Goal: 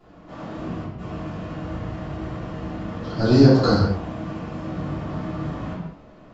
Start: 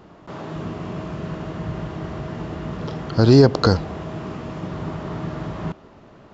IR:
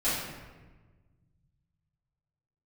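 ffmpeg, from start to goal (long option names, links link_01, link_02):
-filter_complex "[0:a]asettb=1/sr,asplit=3[link_01][link_02][link_03];[link_01]atrim=end=0.824[link_04];[link_02]atrim=start=0.82:end=3.09,asetpts=PTS-STARTPTS,afade=type=in:duration=0.004:curve=qsin,afade=type=out:start_time=2.266:duration=0.004:curve=qsin,acrossover=split=180[link_05][link_06];[link_06]adelay=160[link_07];[link_05][link_07]amix=inputs=2:normalize=0,atrim=end_sample=100107[link_08];[link_03]atrim=start=3.086[link_09];[link_04][link_08]acrossfade=duration=0.004:curve1=hsin:curve2=qsin[link_10];[link_10][link_09]acrossfade=duration=0.004:curve1=qsin:curve2=hsin[link_11];[1:a]atrim=start_sample=2205,afade=type=out:start_time=0.28:duration=0.01,atrim=end_sample=12789[link_12];[link_11][link_12]afir=irnorm=-1:irlink=0,volume=-11.5dB"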